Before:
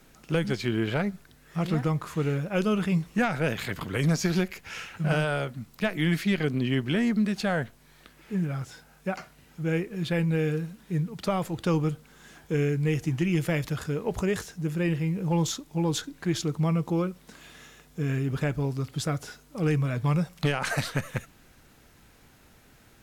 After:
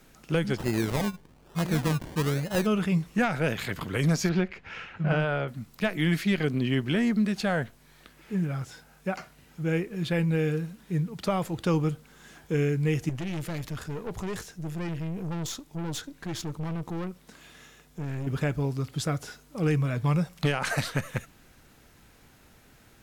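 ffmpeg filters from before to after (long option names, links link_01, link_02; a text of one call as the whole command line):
ffmpeg -i in.wav -filter_complex "[0:a]asplit=3[link_01][link_02][link_03];[link_01]afade=type=out:start_time=0.56:duration=0.02[link_04];[link_02]acrusher=samples=27:mix=1:aa=0.000001:lfo=1:lforange=16.2:lforate=1.1,afade=type=in:start_time=0.56:duration=0.02,afade=type=out:start_time=2.65:duration=0.02[link_05];[link_03]afade=type=in:start_time=2.65:duration=0.02[link_06];[link_04][link_05][link_06]amix=inputs=3:normalize=0,asettb=1/sr,asplit=3[link_07][link_08][link_09];[link_07]atrim=end=4.294[link_10];[link_08]atrim=start=4.29:end=5.48,asetpts=PTS-STARTPTS,afade=type=in:duration=0.004:curve=qsin,afade=type=out:start_time=1.186:duration=0.004:curve=qsin,lowpass=2800[link_11];[link_09]atrim=start=5.476[link_12];[link_10][link_11]acrossfade=duration=0.004:curve1=hsin:curve2=qsin[link_13];[link_13][link_12]acrossfade=duration=0.004:curve1=qsin:curve2=hsin,asettb=1/sr,asplit=3[link_14][link_15][link_16];[link_14]atrim=end=13.094[link_17];[link_15]atrim=start=13.09:end=18.27,asetpts=PTS-STARTPTS,afade=type=in:duration=0.004:curve=qsin,afade=type=out:start_time=5.176:duration=0.004:curve=qsin,aeval=exprs='(tanh(31.6*val(0)+0.5)-tanh(0.5))/31.6':channel_layout=same[link_18];[link_16]atrim=start=18.266[link_19];[link_17][link_18]acrossfade=duration=0.004:curve1=hsin:curve2=qsin[link_20];[link_20][link_19]acrossfade=duration=0.004:curve1=qsin:curve2=hsin" out.wav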